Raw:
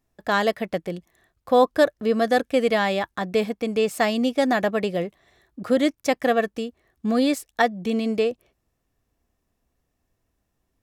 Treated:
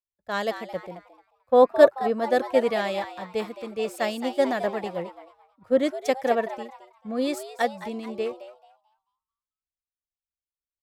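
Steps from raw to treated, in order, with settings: peaking EQ 550 Hz +5.5 dB 0.41 oct; on a send: frequency-shifting echo 220 ms, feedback 49%, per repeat +140 Hz, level -9 dB; on the sum: three bands expanded up and down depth 100%; trim -7 dB

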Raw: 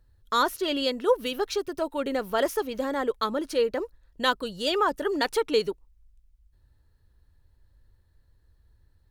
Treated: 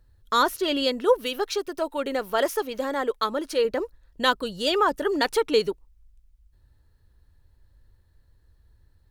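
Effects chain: 1.18–3.65 s: peaking EQ 83 Hz -14.5 dB 2.1 oct; trim +2.5 dB

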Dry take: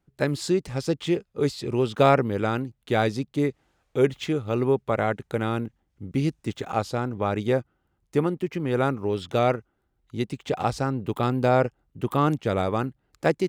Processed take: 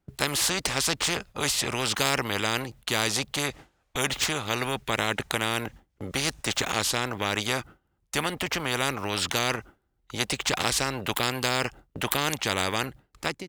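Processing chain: fade out at the end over 0.79 s; gate with hold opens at -46 dBFS; spectrum-flattening compressor 4:1; trim +4.5 dB

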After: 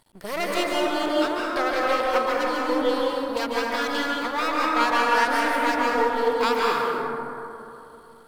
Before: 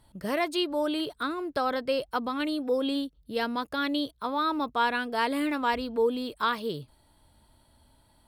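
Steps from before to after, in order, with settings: half-wave rectifier; bass shelf 180 Hz -12 dB; reverberation RT60 3.0 s, pre-delay 133 ms, DRR -4.5 dB; trim +6 dB

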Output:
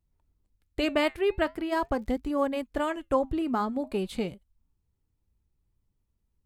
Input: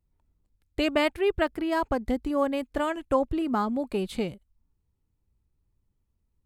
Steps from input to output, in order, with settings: flange 0.42 Hz, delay 0.9 ms, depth 6.3 ms, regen -83%; 1.78–2.47 s: crackle 97 per s -54 dBFS; trim +3 dB

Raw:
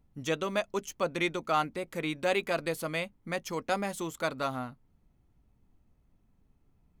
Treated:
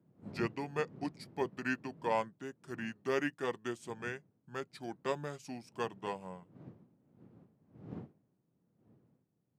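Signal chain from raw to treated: wind noise 240 Hz -41 dBFS; high-pass 170 Hz 24 dB/octave; tape speed -27%; upward expansion 1.5:1, over -47 dBFS; trim -4.5 dB

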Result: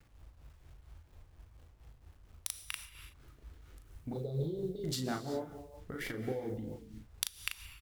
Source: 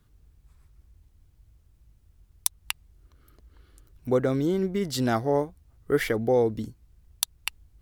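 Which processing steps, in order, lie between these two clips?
local Wiener filter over 9 samples; 4.13–4.84 s: FFT filter 160 Hz 0 dB, 260 Hz -25 dB, 380 Hz 0 dB, 670 Hz -5 dB, 1.5 kHz -30 dB, 2.5 kHz -28 dB, 4 kHz +9 dB, 6.5 kHz -23 dB, 12 kHz -13 dB; compression 10:1, threshold -32 dBFS, peak gain reduction 15.5 dB; gated-style reverb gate 400 ms flat, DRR 9.5 dB; LFO notch saw up 6.1 Hz 320–1600 Hz; bit crusher 11-bit; doubling 38 ms -4 dB; tremolo 4.3 Hz, depth 52%; trim +1 dB

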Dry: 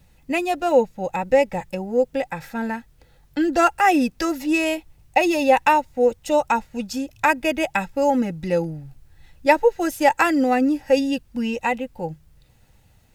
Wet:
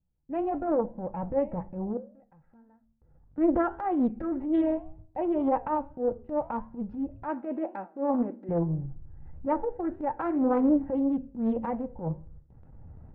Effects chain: recorder AGC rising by 8 dB/s; low-pass 1.3 kHz 24 dB/octave; gate with hold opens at -37 dBFS; bass shelf 360 Hz +10.5 dB; transient shaper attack -12 dB, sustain +1 dB; 1.97–3.38 s: compression 16:1, threshold -44 dBFS, peak gain reduction 33 dB; flange 1.8 Hz, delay 9.9 ms, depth 5 ms, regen +77%; 7.28–8.49 s: brick-wall FIR high-pass 210 Hz; reverberation RT60 0.60 s, pre-delay 29 ms, DRR 20 dB; loudspeaker Doppler distortion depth 0.39 ms; trim -7 dB

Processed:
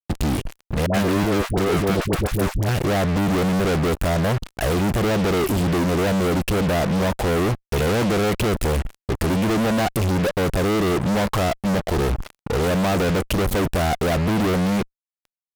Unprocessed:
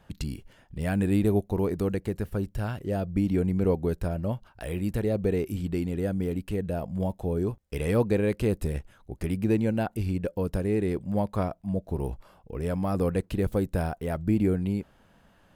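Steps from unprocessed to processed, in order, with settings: fuzz box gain 52 dB, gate -48 dBFS; 0.86–2.69 s: phase dispersion highs, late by 79 ms, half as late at 660 Hz; trim -5.5 dB

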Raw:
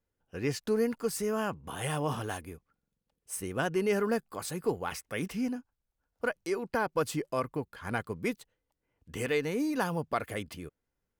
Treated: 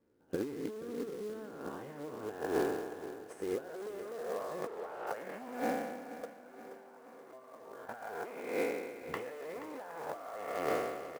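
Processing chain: spectral sustain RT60 1.27 s; hard clipper -30 dBFS, distortion -7 dB; peaking EQ 1.6 kHz +7.5 dB 1.6 oct; compressor with a negative ratio -38 dBFS, ratio -0.5; band-pass sweep 320 Hz -> 660 Hz, 1.49–5.21 s; short-mantissa float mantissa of 2-bit; 4.67–5.07 s: Chebyshev low-pass 2.9 kHz; 6.25–7.89 s: feedback comb 130 Hz, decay 2 s, mix 80%; on a send: feedback delay 477 ms, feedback 55%, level -13.5 dB; on the sum: trim +9.5 dB

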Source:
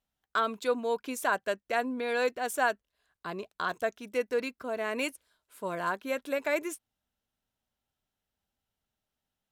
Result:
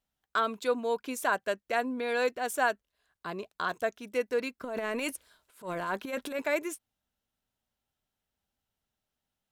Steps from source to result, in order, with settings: 4.63–6.42 s: transient shaper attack -11 dB, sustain +9 dB

